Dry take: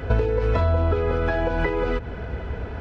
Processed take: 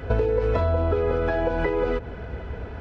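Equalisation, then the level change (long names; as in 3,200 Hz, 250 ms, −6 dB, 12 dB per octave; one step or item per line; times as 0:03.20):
dynamic equaliser 490 Hz, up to +5 dB, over −35 dBFS, Q 0.83
−3.5 dB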